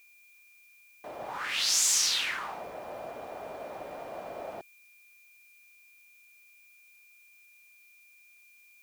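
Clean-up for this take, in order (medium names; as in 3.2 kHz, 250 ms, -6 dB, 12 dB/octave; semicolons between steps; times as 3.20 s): band-stop 2.4 kHz, Q 30; expander -51 dBFS, range -21 dB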